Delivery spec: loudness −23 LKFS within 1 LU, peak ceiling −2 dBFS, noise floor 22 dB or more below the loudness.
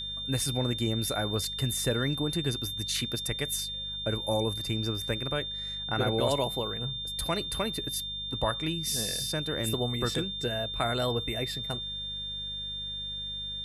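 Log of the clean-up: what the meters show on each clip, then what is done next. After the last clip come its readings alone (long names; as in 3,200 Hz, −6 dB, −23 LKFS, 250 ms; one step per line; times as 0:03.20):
mains hum 50 Hz; hum harmonics up to 200 Hz; level of the hum −44 dBFS; interfering tone 3,600 Hz; level of the tone −34 dBFS; integrated loudness −30.0 LKFS; sample peak −14.5 dBFS; target loudness −23.0 LKFS
→ hum removal 50 Hz, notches 4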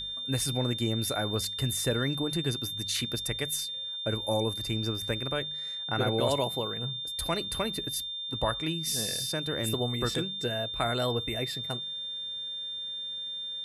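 mains hum none found; interfering tone 3,600 Hz; level of the tone −34 dBFS
→ notch filter 3,600 Hz, Q 30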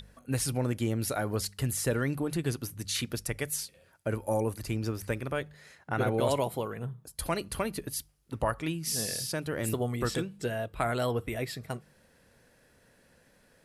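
interfering tone none found; integrated loudness −32.5 LKFS; sample peak −14.0 dBFS; target loudness −23.0 LKFS
→ level +9.5 dB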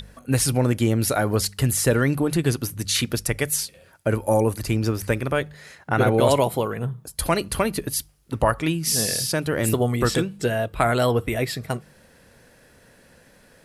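integrated loudness −23.0 LKFS; sample peak −4.5 dBFS; background noise floor −55 dBFS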